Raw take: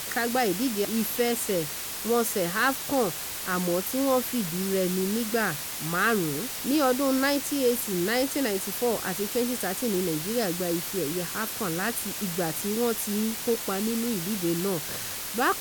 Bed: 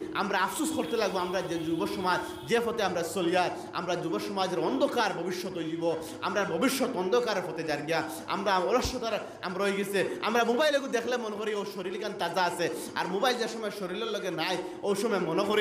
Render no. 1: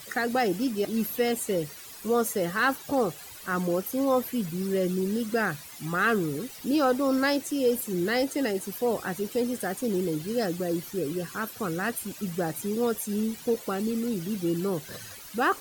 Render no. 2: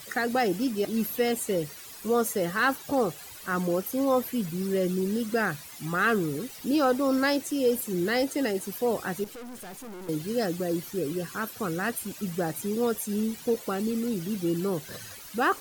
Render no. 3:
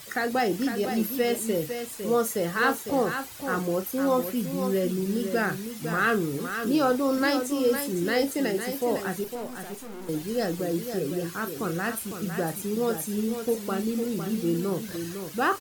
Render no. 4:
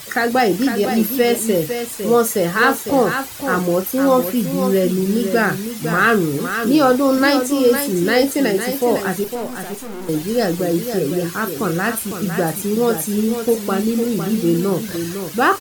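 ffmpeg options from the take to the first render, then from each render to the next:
-af "afftdn=nr=14:nf=-35"
-filter_complex "[0:a]asettb=1/sr,asplit=3[s0][s1][s2];[s0]atrim=end=9.244[s3];[s1]atrim=start=9.24:end=10.09,asetpts=PTS-STARTPTS,afade=t=in:d=0.004:c=qsin,afade=t=out:st=0.846:d=0.004:c=qsin,aeval=exprs='(tanh(100*val(0)+0.25)-tanh(0.25))/100':c=same[s4];[s2]atrim=start=10.086[s5];[s3][s4]acrossfade=d=0.004:c1=hsin:c2=qsin[s6];[s6][s5]acrossfade=d=0.004:c1=qsin:c2=hsin"
-filter_complex "[0:a]asplit=2[s0][s1];[s1]adelay=36,volume=0.282[s2];[s0][s2]amix=inputs=2:normalize=0,asplit=2[s3][s4];[s4]aecho=0:1:505:0.398[s5];[s3][s5]amix=inputs=2:normalize=0"
-af "volume=2.99,alimiter=limit=0.794:level=0:latency=1"

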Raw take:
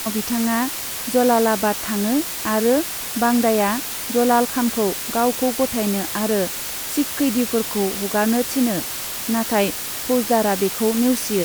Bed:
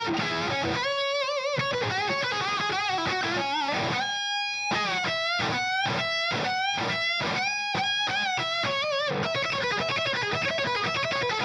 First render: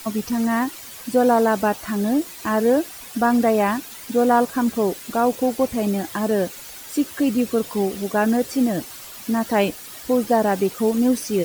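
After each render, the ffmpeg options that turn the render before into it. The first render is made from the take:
-af "afftdn=nr=12:nf=-28"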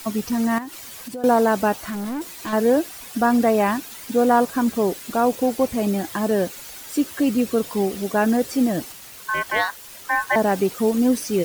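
-filter_complex "[0:a]asettb=1/sr,asplit=3[s0][s1][s2];[s0]atrim=end=0.584[s3];[s1]atrim=start=0.58:end=1.24,asetpts=PTS-STARTPTS,afade=t=in:d=0.004:c=qsin,afade=t=out:st=0.656:d=0.004:c=qsin,acompressor=threshold=0.0282:ratio=4:attack=3.2:release=140:knee=1:detection=peak[s4];[s2]atrim=start=1.236[s5];[s3][s4]acrossfade=d=0.004:c1=hsin:c2=qsin[s6];[s6][s5]acrossfade=d=0.004:c1=qsin:c2=hsin,asettb=1/sr,asplit=3[s7][s8][s9];[s7]atrim=end=1.814[s10];[s8]atrim=start=1.81:end=2.53,asetpts=PTS-STARTPTS,afade=t=in:d=0.004:c=qsin,afade=t=out:st=0.716:d=0.004:c=qsin,asoftclip=type=hard:threshold=0.0531[s11];[s9]atrim=start=2.526[s12];[s10][s11]acrossfade=d=0.004:c1=hsin:c2=qsin[s13];[s13][s12]acrossfade=d=0.004:c1=qsin:c2=hsin,asettb=1/sr,asplit=3[s14][s15][s16];[s14]atrim=end=8.924[s17];[s15]atrim=start=8.92:end=10.36,asetpts=PTS-STARTPTS,afade=t=in:d=0.004:c=qsin,afade=t=out:st=1.436:d=0.004:c=qsin,aeval=exprs='val(0)*sin(2*PI*1300*n/s)':c=same[s18];[s16]atrim=start=10.356[s19];[s17][s18]acrossfade=d=0.004:c1=hsin:c2=qsin[s20];[s20][s19]acrossfade=d=0.004:c1=qsin:c2=hsin"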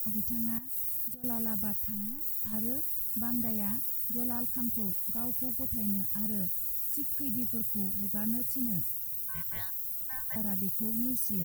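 -af "firequalizer=gain_entry='entry(120,0);entry(350,-30);entry(15000,10)':delay=0.05:min_phase=1"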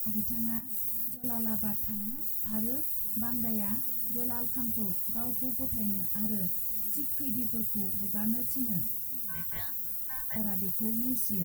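-filter_complex "[0:a]asplit=2[s0][s1];[s1]adelay=23,volume=0.447[s2];[s0][s2]amix=inputs=2:normalize=0,aecho=1:1:544|1088|1632:0.106|0.0466|0.0205"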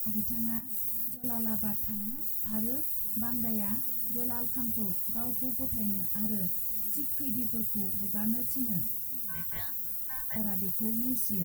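-af anull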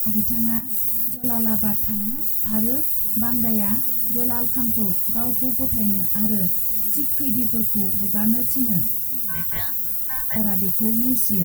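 -af "volume=3.55"

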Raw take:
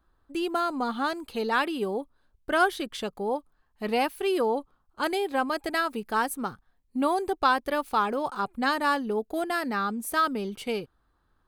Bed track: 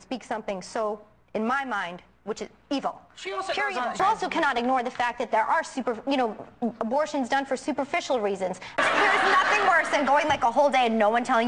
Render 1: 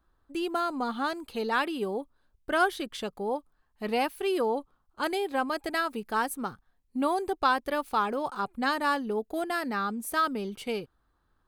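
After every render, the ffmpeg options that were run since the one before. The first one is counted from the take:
-af "volume=0.794"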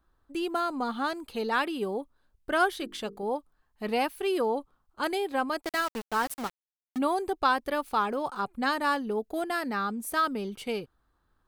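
-filter_complex "[0:a]asettb=1/sr,asplit=3[s0][s1][s2];[s0]atrim=end=2.724[s3];[s1]atrim=start=2.72:end=3.23,asetpts=PTS-STARTPTS,afade=t=in:d=0.004:c=qsin,afade=t=out:st=0.506:d=0.004:c=qsin,bandreject=f=50:t=h:w=6,bandreject=f=100:t=h:w=6,bandreject=f=150:t=h:w=6,bandreject=f=200:t=h:w=6,bandreject=f=250:t=h:w=6,bandreject=f=300:t=h:w=6,bandreject=f=350:t=h:w=6,bandreject=f=400:t=h:w=6,bandreject=f=450:t=h:w=6[s4];[s2]atrim=start=3.226[s5];[s3][s4]acrossfade=d=0.004:c1=hsin:c2=qsin[s6];[s6][s5]acrossfade=d=0.004:c1=qsin:c2=hsin,asplit=3[s7][s8][s9];[s7]afade=t=out:st=5.6:d=0.02[s10];[s8]aeval=exprs='val(0)*gte(abs(val(0)),0.0211)':c=same,afade=t=in:st=5.6:d=0.02,afade=t=out:st=6.97:d=0.02[s11];[s9]afade=t=in:st=6.97:d=0.02[s12];[s10][s11][s12]amix=inputs=3:normalize=0"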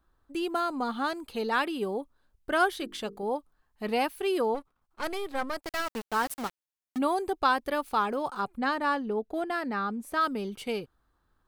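-filter_complex "[0:a]asplit=3[s0][s1][s2];[s0]afade=t=out:st=4.54:d=0.02[s3];[s1]aeval=exprs='if(lt(val(0),0),0.251*val(0),val(0))':c=same,afade=t=in:st=4.54:d=0.02,afade=t=out:st=5.86:d=0.02[s4];[s2]afade=t=in:st=5.86:d=0.02[s5];[s3][s4][s5]amix=inputs=3:normalize=0,asplit=3[s6][s7][s8];[s6]afade=t=out:st=8.57:d=0.02[s9];[s7]lowpass=f=2800:p=1,afade=t=in:st=8.57:d=0.02,afade=t=out:st=10.2:d=0.02[s10];[s8]afade=t=in:st=10.2:d=0.02[s11];[s9][s10][s11]amix=inputs=3:normalize=0"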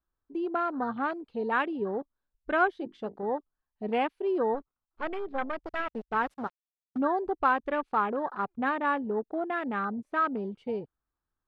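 -af "lowpass=3800,afwtdn=0.0158"

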